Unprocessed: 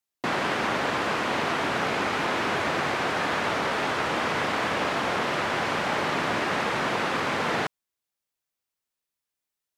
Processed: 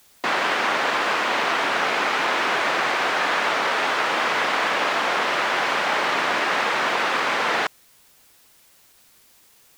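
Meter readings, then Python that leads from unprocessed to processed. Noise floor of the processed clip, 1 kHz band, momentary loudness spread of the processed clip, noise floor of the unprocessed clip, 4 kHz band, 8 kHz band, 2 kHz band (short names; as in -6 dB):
-55 dBFS, +5.0 dB, 0 LU, under -85 dBFS, +6.0 dB, +4.5 dB, +6.0 dB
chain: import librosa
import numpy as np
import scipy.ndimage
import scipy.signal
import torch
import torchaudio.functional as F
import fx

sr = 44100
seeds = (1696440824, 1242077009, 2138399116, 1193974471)

y = fx.weighting(x, sr, curve='A')
y = fx.quant_dither(y, sr, seeds[0], bits=10, dither='triangular')
y = y * librosa.db_to_amplitude(5.0)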